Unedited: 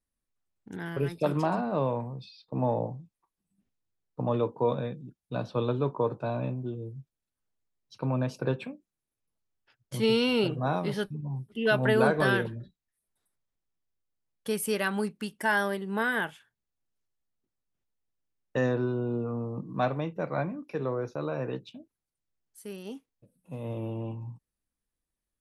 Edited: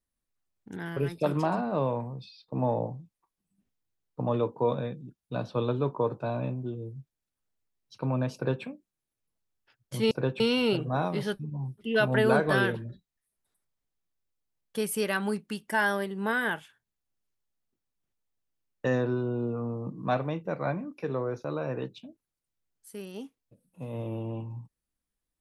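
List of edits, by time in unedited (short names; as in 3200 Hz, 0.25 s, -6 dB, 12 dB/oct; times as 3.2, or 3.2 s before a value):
8.35–8.64 copy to 10.11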